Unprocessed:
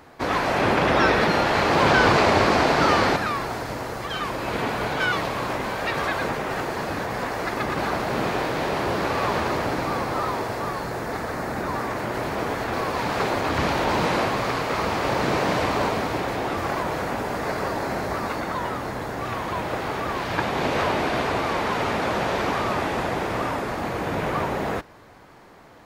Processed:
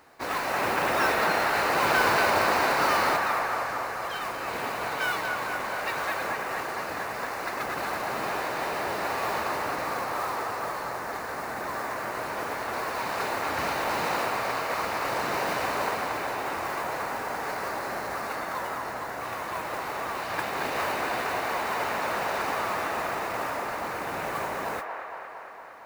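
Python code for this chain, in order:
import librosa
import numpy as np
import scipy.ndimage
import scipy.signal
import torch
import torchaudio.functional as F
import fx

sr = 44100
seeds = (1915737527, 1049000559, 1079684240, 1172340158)

y = fx.low_shelf(x, sr, hz=360.0, db=-11.0)
y = fx.notch(y, sr, hz=3300.0, q=9.9)
y = fx.mod_noise(y, sr, seeds[0], snr_db=15)
y = fx.echo_wet_bandpass(y, sr, ms=230, feedback_pct=71, hz=1100.0, wet_db=-3.5)
y = y * 10.0 ** (-4.5 / 20.0)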